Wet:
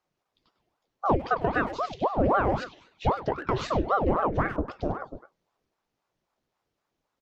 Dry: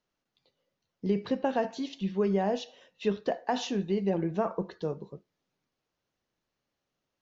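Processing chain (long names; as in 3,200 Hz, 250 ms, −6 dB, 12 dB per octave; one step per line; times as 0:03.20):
treble cut that deepens with the level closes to 2,900 Hz, closed at −23.5 dBFS
low-shelf EQ 340 Hz +7.5 dB
in parallel at −9 dB: gain into a clipping stage and back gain 18 dB
on the sum: far-end echo of a speakerphone 100 ms, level −9 dB
ring modulator whose carrier an LFO sweeps 560 Hz, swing 80%, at 3.8 Hz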